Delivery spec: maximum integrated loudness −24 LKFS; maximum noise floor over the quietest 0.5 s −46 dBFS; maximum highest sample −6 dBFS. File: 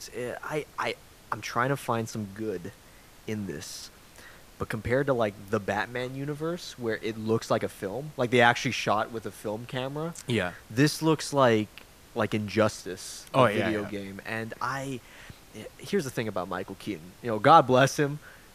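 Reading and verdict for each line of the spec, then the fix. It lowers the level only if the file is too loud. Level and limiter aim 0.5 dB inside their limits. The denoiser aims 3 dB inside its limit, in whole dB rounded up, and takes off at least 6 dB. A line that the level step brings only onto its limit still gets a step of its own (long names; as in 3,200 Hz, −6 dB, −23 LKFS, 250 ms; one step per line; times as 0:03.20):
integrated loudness −28.0 LKFS: in spec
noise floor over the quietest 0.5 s −53 dBFS: in spec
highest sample −5.0 dBFS: out of spec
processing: brickwall limiter −6.5 dBFS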